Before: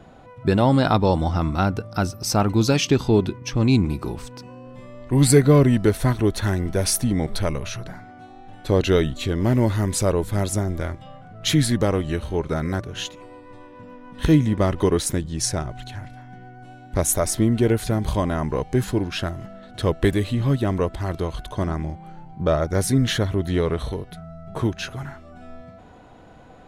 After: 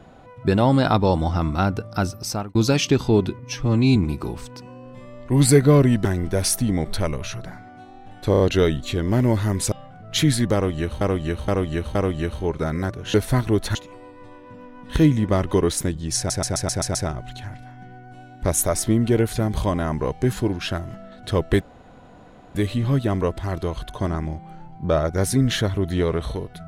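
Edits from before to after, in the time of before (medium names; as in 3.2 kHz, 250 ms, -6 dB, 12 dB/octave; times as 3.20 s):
2.15–2.55 s: fade out
3.39–3.77 s: stretch 1.5×
5.86–6.47 s: move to 13.04 s
8.73 s: stutter 0.03 s, 4 plays
10.05–11.03 s: delete
11.85–12.32 s: loop, 4 plays
15.46 s: stutter 0.13 s, 7 plays
20.12 s: insert room tone 0.94 s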